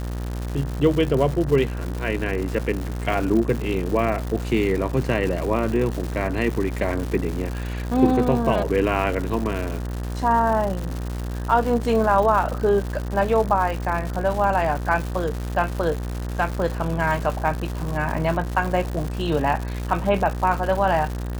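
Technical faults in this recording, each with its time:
buzz 60 Hz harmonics 32 -28 dBFS
crackle 240/s -27 dBFS

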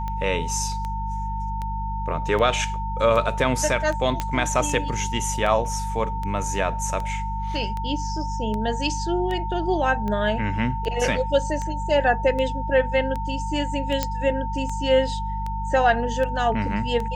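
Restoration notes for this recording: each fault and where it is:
hum 50 Hz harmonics 4 -29 dBFS
tick 78 rpm -18 dBFS
tone 900 Hz -29 dBFS
4.2 pop -10 dBFS
14.03 pop -7 dBFS

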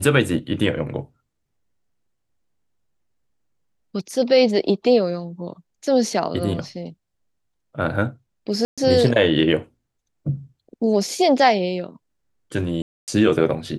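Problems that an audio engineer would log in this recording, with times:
8.65–8.78 gap 0.126 s
12.82–13.08 gap 0.258 s

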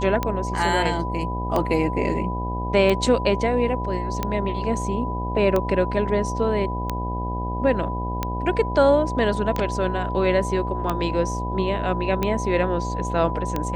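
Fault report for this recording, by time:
buzz 60 Hz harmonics 14 -28 dBFS
tick 45 rpm -10 dBFS
tone 990 Hz -29 dBFS

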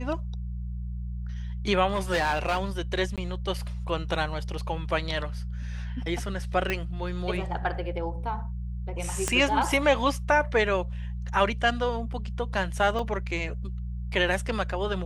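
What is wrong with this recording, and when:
hum 60 Hz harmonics 3 -33 dBFS
1.88–2.65 clipped -20.5 dBFS
3.16–3.18 gap 17 ms
6.7 pop -13 dBFS
9.28 pop -11 dBFS
12.99 gap 2.6 ms

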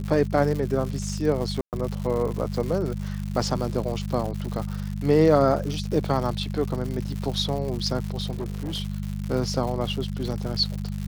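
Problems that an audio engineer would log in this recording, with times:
crackle 180/s -30 dBFS
hum 50 Hz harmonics 4 -30 dBFS
1.61–1.73 gap 0.118 s
8.3–8.81 clipped -25.5 dBFS

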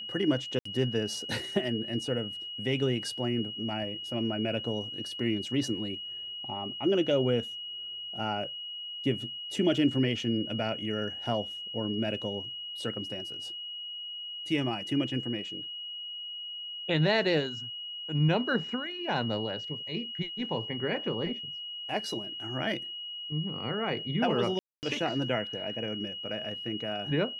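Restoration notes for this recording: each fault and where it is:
tone 2900 Hz -37 dBFS
0.59–0.65 gap 64 ms
24.59–24.83 gap 0.239 s

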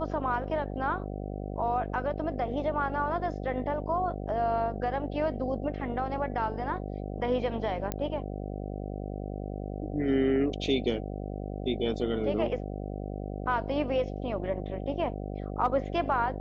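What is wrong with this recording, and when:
buzz 50 Hz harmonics 15 -36 dBFS
7.92 pop -16 dBFS

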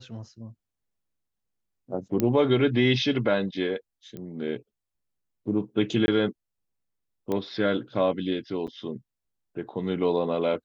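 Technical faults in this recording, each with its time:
2.2 pop -11 dBFS
4.17 pop -26 dBFS
6.06–6.08 gap 21 ms
7.32 pop -17 dBFS
8.67–8.68 gap 7.2 ms

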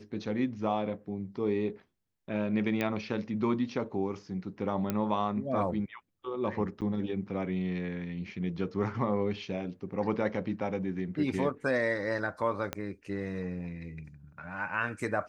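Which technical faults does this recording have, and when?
2.81 pop -17 dBFS
4.9 pop -16 dBFS
6.81–6.82 gap 8.5 ms
12.73 pop -17 dBFS

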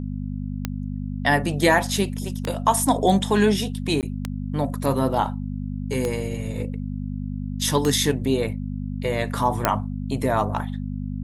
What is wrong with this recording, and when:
hum 50 Hz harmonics 5 -29 dBFS
tick 33 1/3 rpm -10 dBFS
4.01–4.03 gap 18 ms
9.65 pop

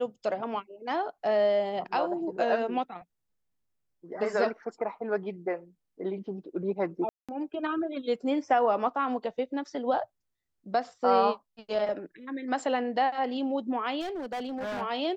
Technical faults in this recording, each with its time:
7.09–7.29 gap 0.196 s
14–14.82 clipped -31 dBFS

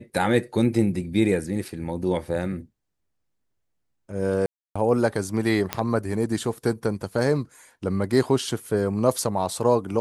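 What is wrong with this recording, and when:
4.46–4.75 gap 0.295 s
5.73 pop -8 dBFS

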